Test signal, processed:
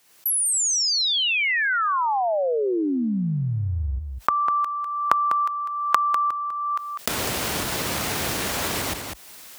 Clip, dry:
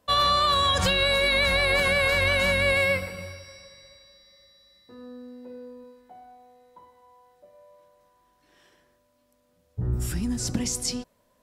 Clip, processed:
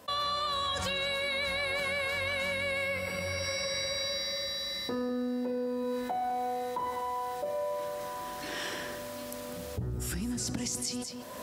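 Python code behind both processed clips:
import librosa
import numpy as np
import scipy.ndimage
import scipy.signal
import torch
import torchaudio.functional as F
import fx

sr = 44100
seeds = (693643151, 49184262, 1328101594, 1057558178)

p1 = fx.recorder_agc(x, sr, target_db=-15.5, rise_db_per_s=52.0, max_gain_db=30)
p2 = scipy.signal.sosfilt(scipy.signal.butter(4, 53.0, 'highpass', fs=sr, output='sos'), p1)
p3 = fx.low_shelf(p2, sr, hz=170.0, db=-6.5)
p4 = p3 + fx.echo_single(p3, sr, ms=199, db=-13.0, dry=0)
p5 = fx.env_flatten(p4, sr, amount_pct=50)
y = p5 * 10.0 ** (-10.5 / 20.0)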